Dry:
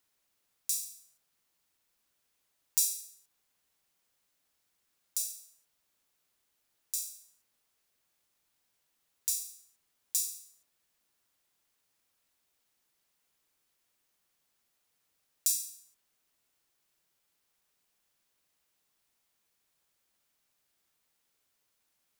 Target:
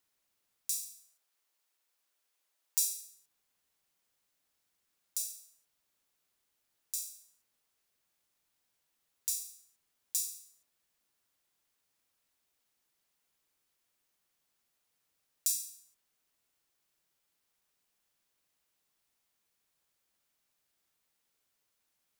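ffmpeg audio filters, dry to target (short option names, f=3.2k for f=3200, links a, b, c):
-filter_complex "[0:a]asettb=1/sr,asplit=3[a][b][c];[a]atrim=end=0.964[d];[b]atrim=start=0.96:end=2.83,asetpts=PTS-STARTPTS,afade=t=in:d=0.004:c=qsin,afade=t=out:st=1.866:d=0.004:c=qsin,highpass=410[e];[c]atrim=start=2.826[f];[d][e]acrossfade=d=0.004:c1=hsin:c2=qsin[g];[g][f]acrossfade=d=0.004:c1=qsin:c2=hsin,volume=-2.5dB"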